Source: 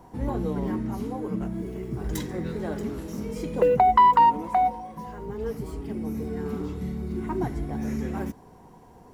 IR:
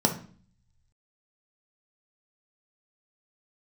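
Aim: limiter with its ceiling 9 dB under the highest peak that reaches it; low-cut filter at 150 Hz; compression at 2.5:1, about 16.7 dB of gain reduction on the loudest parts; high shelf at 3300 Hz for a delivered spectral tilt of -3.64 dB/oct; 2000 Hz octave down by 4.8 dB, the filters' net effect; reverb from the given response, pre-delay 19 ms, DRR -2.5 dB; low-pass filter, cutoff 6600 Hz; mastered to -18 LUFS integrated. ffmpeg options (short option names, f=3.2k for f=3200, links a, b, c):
-filter_complex "[0:a]highpass=150,lowpass=6.6k,equalizer=f=2k:t=o:g=-3.5,highshelf=f=3.3k:g=-7.5,acompressor=threshold=-41dB:ratio=2.5,alimiter=level_in=8.5dB:limit=-24dB:level=0:latency=1,volume=-8.5dB,asplit=2[a][b];[1:a]atrim=start_sample=2205,adelay=19[c];[b][c]afir=irnorm=-1:irlink=0,volume=-9.5dB[d];[a][d]amix=inputs=2:normalize=0,volume=11.5dB"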